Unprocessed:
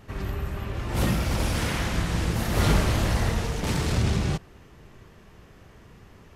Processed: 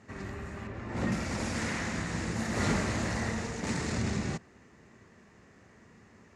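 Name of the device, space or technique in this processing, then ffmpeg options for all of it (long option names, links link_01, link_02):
car door speaker: -filter_complex "[0:a]asettb=1/sr,asplit=3[link_01][link_02][link_03];[link_01]atrim=end=0.674[link_04];[link_02]atrim=start=0.67:end=1.12,asetpts=PTS-STARTPTS,afade=type=in:duration=0.004:curve=qsin,afade=type=out:start_time=0.446:duration=0.004:curve=qsin,lowpass=frequency=2300:poles=1[link_05];[link_03]atrim=start=1.116[link_06];[link_04][link_05]acrossfade=duration=0.004:curve1=hsin:curve2=qsin[link_07];[link_07][link_06]acrossfade=duration=0.004:curve1=qsin:curve2=hsin,highpass=99,equalizer=frequency=140:width_type=q:width=4:gain=-4,equalizer=frequency=230:width_type=q:width=4:gain=6,equalizer=frequency=1900:width_type=q:width=4:gain=6,equalizer=frequency=3200:width_type=q:width=4:gain=-7,equalizer=frequency=7000:width_type=q:width=4:gain=6,lowpass=frequency=8700:width=0.5412,lowpass=frequency=8700:width=1.3066,volume=-6dB"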